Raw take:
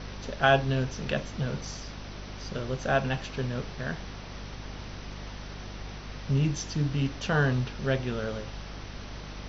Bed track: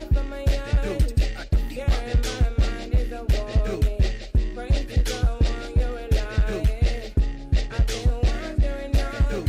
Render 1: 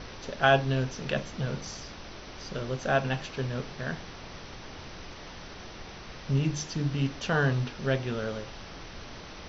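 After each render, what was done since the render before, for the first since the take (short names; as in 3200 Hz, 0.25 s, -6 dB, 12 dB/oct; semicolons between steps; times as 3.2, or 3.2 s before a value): notches 50/100/150/200/250 Hz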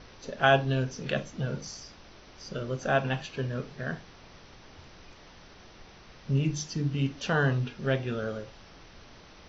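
noise print and reduce 8 dB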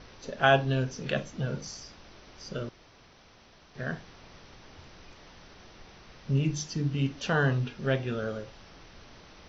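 2.69–3.75 room tone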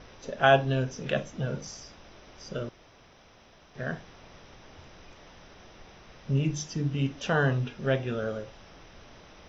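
bell 610 Hz +3 dB 0.77 oct; notch 4400 Hz, Q 7.2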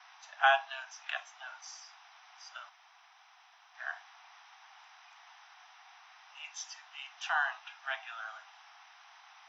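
steep high-pass 730 Hz 96 dB/oct; high shelf 3500 Hz -7 dB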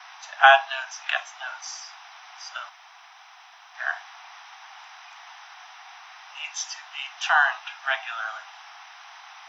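gain +11.5 dB; limiter -1 dBFS, peak gain reduction 1 dB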